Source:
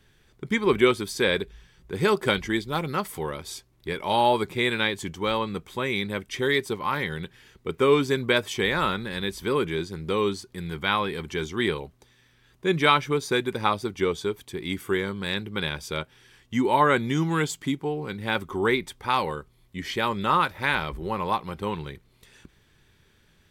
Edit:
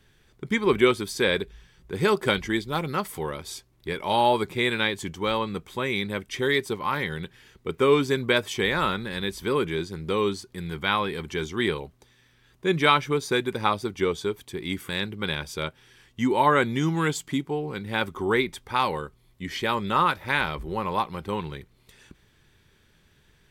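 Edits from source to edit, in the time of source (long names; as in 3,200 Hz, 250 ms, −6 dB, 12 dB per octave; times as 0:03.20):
0:14.89–0:15.23: remove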